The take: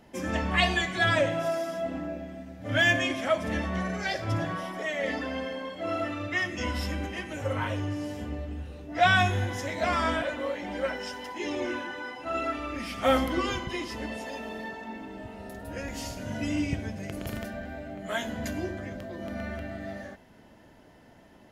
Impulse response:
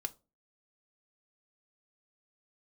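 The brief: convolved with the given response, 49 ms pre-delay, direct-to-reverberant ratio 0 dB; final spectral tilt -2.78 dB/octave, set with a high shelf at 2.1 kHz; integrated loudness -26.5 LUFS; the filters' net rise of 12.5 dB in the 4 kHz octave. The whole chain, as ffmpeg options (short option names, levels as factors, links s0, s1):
-filter_complex "[0:a]highshelf=f=2100:g=8.5,equalizer=f=4000:t=o:g=8.5,asplit=2[s0][s1];[1:a]atrim=start_sample=2205,adelay=49[s2];[s1][s2]afir=irnorm=-1:irlink=0,volume=1.06[s3];[s0][s3]amix=inputs=2:normalize=0,volume=0.531"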